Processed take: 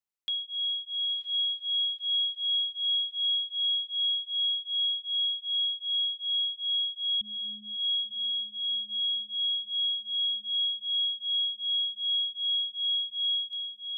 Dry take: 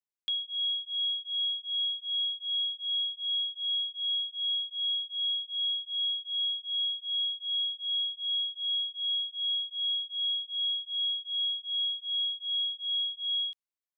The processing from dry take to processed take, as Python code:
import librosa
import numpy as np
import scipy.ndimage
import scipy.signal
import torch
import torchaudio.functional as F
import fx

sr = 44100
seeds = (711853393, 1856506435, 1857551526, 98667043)

y = fx.freq_invert(x, sr, carrier_hz=3100, at=(7.21, 7.77))
y = fx.echo_diffused(y, sr, ms=1010, feedback_pct=57, wet_db=-8.0)